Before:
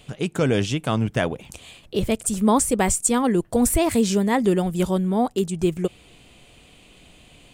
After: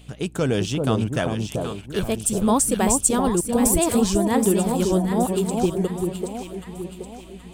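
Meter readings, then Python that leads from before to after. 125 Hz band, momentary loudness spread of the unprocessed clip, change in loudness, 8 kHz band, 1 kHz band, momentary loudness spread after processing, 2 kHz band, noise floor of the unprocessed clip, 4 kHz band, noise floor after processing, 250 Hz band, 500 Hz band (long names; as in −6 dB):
+0.5 dB, 9 LU, 0.0 dB, +2.5 dB, 0.0 dB, 15 LU, −2.5 dB, −52 dBFS, 0.0 dB, −42 dBFS, +0.5 dB, +0.5 dB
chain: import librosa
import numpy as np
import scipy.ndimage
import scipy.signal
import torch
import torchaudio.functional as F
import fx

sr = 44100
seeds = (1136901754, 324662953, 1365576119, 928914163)

p1 = fx.notch(x, sr, hz=7000.0, q=29.0)
p2 = fx.backlash(p1, sr, play_db=-31.5)
p3 = p1 + (p2 * librosa.db_to_amplitude(-10.0))
p4 = fx.add_hum(p3, sr, base_hz=60, snr_db=23)
p5 = fx.high_shelf(p4, sr, hz=5400.0, db=5.5)
p6 = p5 + fx.echo_alternate(p5, sr, ms=387, hz=960.0, feedback_pct=65, wet_db=-3.0, dry=0)
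p7 = fx.dynamic_eq(p6, sr, hz=2100.0, q=3.8, threshold_db=-44.0, ratio=4.0, max_db=-6)
y = p7 * librosa.db_to_amplitude(-4.0)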